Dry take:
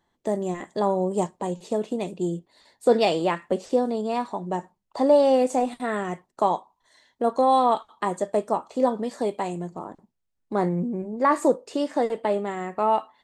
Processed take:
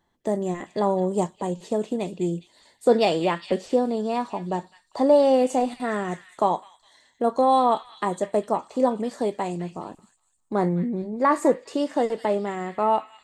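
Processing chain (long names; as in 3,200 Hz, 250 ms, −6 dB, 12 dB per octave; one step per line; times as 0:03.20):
low-shelf EQ 220 Hz +3 dB
echo through a band-pass that steps 205 ms, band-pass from 2,500 Hz, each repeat 0.7 octaves, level −8.5 dB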